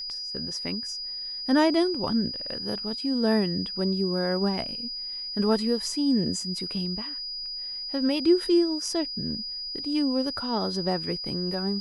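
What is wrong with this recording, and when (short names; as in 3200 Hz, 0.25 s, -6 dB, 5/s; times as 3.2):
tone 4900 Hz -32 dBFS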